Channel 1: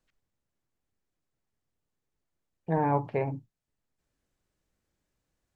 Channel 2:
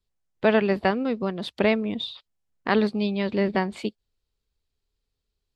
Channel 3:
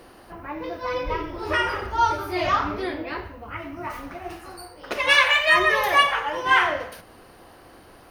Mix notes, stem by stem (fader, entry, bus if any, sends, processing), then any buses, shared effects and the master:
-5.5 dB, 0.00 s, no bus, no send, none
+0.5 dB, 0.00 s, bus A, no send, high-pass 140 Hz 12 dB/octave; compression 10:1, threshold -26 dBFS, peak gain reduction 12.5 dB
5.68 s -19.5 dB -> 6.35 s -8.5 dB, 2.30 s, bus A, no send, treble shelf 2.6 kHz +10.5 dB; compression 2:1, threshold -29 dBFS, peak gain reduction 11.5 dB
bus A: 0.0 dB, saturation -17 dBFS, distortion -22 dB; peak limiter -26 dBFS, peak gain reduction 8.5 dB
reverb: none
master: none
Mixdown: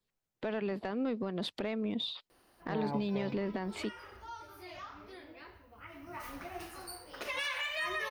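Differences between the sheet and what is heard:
stem 1 -5.5 dB -> -12.0 dB; master: extra peaking EQ 6.4 kHz -2.5 dB 2.7 oct

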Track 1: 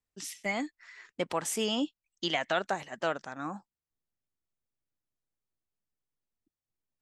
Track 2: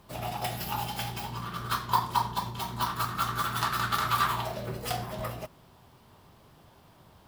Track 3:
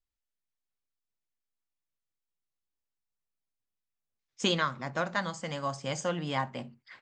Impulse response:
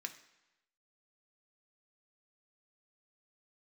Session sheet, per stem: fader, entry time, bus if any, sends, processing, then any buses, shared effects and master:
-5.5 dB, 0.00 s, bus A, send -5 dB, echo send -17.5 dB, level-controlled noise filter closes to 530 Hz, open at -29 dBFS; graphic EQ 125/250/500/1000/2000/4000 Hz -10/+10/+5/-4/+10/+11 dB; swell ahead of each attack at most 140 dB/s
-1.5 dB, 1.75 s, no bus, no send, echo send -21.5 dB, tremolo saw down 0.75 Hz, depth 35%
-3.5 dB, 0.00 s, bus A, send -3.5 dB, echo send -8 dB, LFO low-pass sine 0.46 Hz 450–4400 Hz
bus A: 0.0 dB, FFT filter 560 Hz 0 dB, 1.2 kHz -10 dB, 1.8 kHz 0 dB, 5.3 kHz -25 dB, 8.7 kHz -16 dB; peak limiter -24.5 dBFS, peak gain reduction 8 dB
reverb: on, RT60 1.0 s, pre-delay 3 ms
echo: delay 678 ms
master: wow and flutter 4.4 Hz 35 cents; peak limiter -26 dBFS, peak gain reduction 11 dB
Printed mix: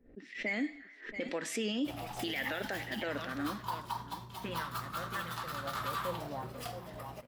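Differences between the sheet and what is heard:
stem 2 -1.5 dB -> -8.0 dB; stem 3 -3.5 dB -> -13.5 dB

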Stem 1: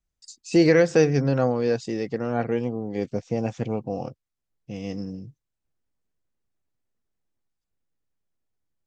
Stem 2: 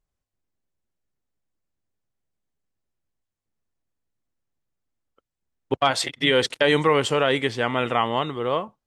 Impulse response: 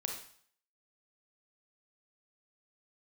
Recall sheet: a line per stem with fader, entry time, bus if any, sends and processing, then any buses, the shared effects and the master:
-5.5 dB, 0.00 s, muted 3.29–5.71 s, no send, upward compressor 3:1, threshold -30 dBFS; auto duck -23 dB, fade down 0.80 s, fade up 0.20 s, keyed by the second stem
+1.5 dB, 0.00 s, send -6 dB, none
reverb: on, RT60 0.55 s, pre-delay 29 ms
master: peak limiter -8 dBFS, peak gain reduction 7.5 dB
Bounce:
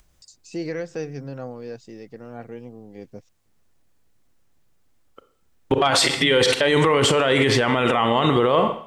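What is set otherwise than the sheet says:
stem 1 -5.5 dB -> -12.0 dB; stem 2 +1.5 dB -> +13.0 dB

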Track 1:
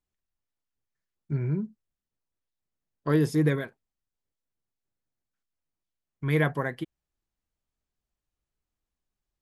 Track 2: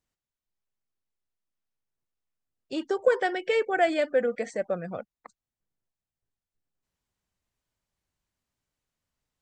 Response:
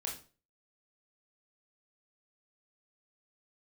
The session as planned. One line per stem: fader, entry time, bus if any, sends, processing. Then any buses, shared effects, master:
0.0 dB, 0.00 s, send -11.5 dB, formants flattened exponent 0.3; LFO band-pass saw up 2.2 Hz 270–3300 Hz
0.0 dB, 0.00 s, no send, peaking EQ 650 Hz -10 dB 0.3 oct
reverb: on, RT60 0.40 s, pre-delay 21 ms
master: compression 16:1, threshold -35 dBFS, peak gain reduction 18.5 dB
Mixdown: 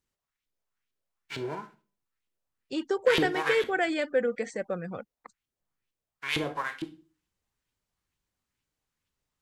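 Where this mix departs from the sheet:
stem 1: send -11.5 dB -> -4 dB; master: missing compression 16:1, threshold -35 dBFS, peak gain reduction 18.5 dB

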